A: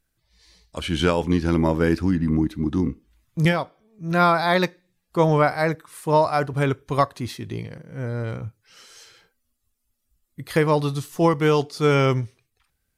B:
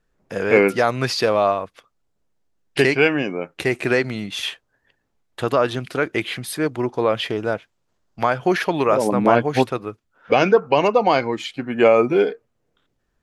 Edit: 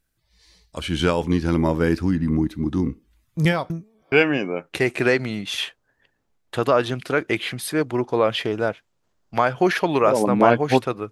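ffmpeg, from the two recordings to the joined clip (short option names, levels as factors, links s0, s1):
-filter_complex "[0:a]apad=whole_dur=11.11,atrim=end=11.11,asplit=2[s0][s1];[s0]atrim=end=3.702[s2];[s1]atrim=start=3.698:end=4.122,asetpts=PTS-STARTPTS,areverse[s3];[1:a]atrim=start=2.968:end=9.96[s4];[s2][s3]acrossfade=d=0.004:c1=hsin:c2=hsin[s5];[s5][s4]acrossfade=d=0.004:c1=hsin:c2=hsin"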